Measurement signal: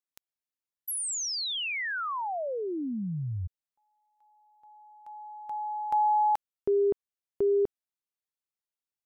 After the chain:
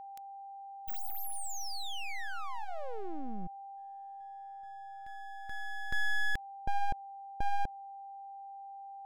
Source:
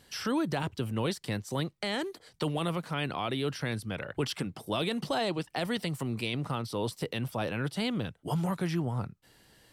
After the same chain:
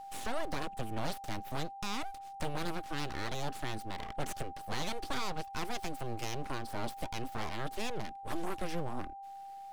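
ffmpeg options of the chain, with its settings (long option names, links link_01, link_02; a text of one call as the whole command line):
ffmpeg -i in.wav -af "aeval=exprs='abs(val(0))':channel_layout=same,aeval=exprs='val(0)+0.00891*sin(2*PI*790*n/s)':channel_layout=same,volume=-3dB" out.wav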